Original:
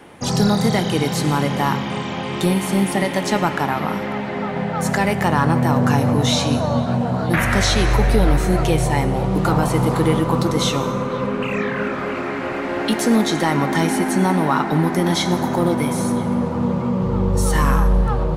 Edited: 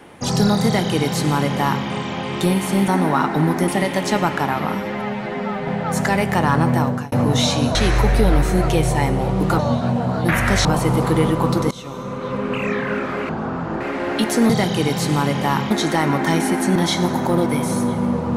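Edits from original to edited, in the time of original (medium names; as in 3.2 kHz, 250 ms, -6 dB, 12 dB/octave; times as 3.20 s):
0.65–1.86 s: copy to 13.19 s
3.95–4.57 s: stretch 1.5×
5.66–6.01 s: fade out
6.64–7.70 s: move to 9.54 s
10.60–11.42 s: fade in, from -22.5 dB
12.18–12.50 s: speed 62%
14.24–15.04 s: move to 2.88 s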